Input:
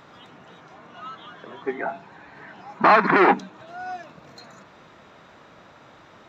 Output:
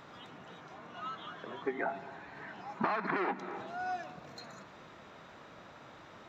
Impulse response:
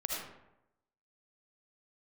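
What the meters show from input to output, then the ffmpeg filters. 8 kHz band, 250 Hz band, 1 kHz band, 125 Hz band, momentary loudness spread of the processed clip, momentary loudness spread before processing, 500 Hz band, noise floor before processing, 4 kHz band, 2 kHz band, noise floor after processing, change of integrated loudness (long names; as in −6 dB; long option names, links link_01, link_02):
can't be measured, −13.5 dB, −15.0 dB, −11.5 dB, 19 LU, 23 LU, −14.0 dB, −50 dBFS, −10.5 dB, −14.5 dB, −54 dBFS, −18.0 dB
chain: -filter_complex "[0:a]asplit=2[link_01][link_02];[1:a]atrim=start_sample=2205,adelay=113[link_03];[link_02][link_03]afir=irnorm=-1:irlink=0,volume=-21dB[link_04];[link_01][link_04]amix=inputs=2:normalize=0,acompressor=threshold=-26dB:ratio=12,volume=-3.5dB"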